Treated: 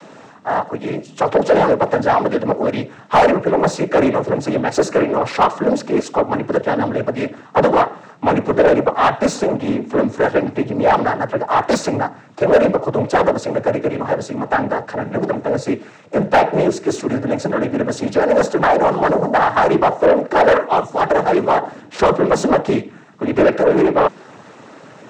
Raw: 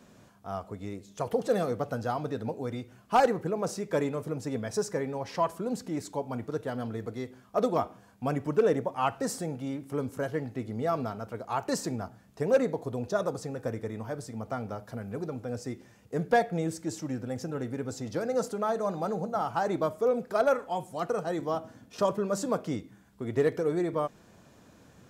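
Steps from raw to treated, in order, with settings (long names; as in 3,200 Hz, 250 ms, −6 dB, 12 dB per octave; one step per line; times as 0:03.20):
cochlear-implant simulation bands 12
mid-hump overdrive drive 26 dB, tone 1,300 Hz, clips at −6.5 dBFS
level +5 dB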